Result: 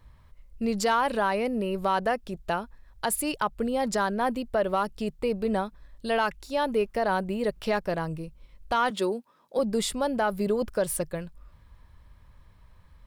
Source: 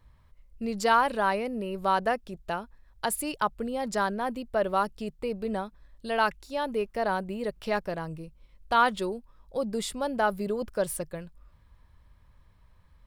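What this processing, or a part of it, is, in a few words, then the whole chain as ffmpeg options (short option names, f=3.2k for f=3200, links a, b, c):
soft clipper into limiter: -filter_complex "[0:a]asoftclip=type=tanh:threshold=-12.5dB,alimiter=limit=-20.5dB:level=0:latency=1:release=150,asettb=1/sr,asplit=3[a][b][c];[a]atrim=end=8.904[d];[b]atrim=start=8.9:end=9.59,asetpts=PTS-STARTPTS,afade=t=in:d=0.004:c=qsin,afade=t=out:st=0.686:d=0.004:c=qsin,highpass=f=190:w=0.5412,highpass=f=190:w=1.3066[e];[c]atrim=start=9.586[f];[d][e]acrossfade=d=0.004:c1=hsin:c2=qsin[g];[g][f]acrossfade=d=0.004:c1=qsin:c2=hsin,volume=4.5dB"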